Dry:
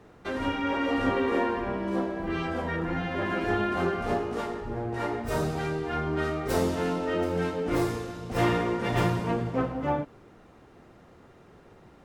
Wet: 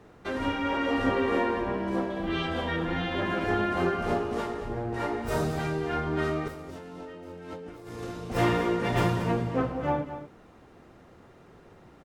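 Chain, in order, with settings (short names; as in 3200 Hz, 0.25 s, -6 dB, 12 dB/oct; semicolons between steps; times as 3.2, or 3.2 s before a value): 2.1–3.21 bell 3400 Hz +11 dB 0.48 oct; 6.48–8.04 negative-ratio compressor -43 dBFS, ratio -1; echo 0.226 s -11.5 dB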